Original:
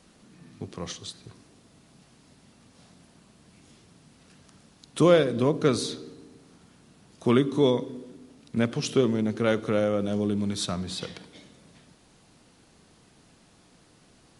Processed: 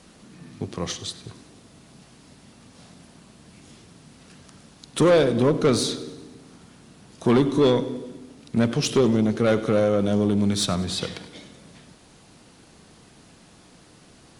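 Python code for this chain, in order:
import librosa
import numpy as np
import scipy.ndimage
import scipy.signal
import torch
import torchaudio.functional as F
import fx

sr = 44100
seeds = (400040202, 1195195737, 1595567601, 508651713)

p1 = fx.tube_stage(x, sr, drive_db=19.0, bias=0.25)
p2 = p1 + fx.echo_feedback(p1, sr, ms=98, feedback_pct=55, wet_db=-18.5, dry=0)
y = F.gain(torch.from_numpy(p2), 7.0).numpy()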